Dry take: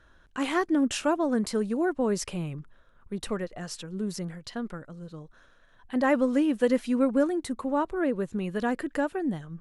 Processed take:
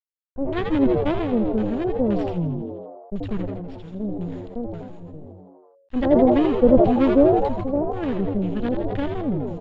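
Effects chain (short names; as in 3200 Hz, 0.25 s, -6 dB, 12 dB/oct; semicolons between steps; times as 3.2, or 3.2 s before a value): in parallel at -11 dB: sample-and-hold 32×; on the sum: HPF 51 Hz 12 dB/oct; notch 6100 Hz, Q 6; whine 6900 Hz -46 dBFS; added harmonics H 3 -13 dB, 5 -40 dB, 7 -39 dB, 8 -24 dB, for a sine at -13.5 dBFS; bit-crush 8-bit; dynamic EQ 130 Hz, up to +6 dB, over -44 dBFS, Q 1; LFO low-pass square 1.9 Hz 590–3300 Hz; RIAA curve playback; on a send: frequency-shifting echo 82 ms, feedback 53%, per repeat +92 Hz, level -8 dB; on the sum: sustainer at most 35 dB/s; gain -2.5 dB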